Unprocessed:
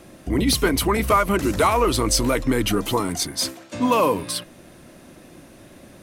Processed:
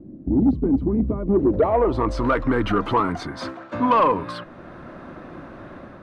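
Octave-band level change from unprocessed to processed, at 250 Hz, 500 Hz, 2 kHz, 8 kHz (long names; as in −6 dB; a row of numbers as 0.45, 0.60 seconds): +2.0 dB, +0.5 dB, −4.5 dB, below −25 dB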